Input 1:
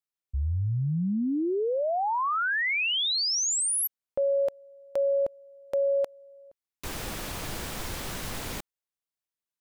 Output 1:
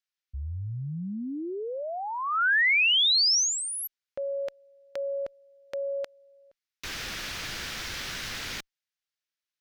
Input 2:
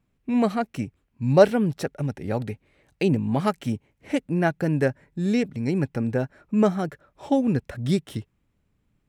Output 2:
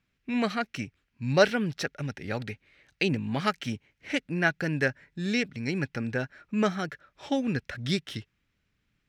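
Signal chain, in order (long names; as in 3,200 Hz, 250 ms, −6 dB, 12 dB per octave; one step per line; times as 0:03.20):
flat-topped bell 2,900 Hz +11.5 dB 2.5 octaves
harmonic generator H 2 −42 dB, 4 −43 dB, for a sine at −1 dBFS
level −6.5 dB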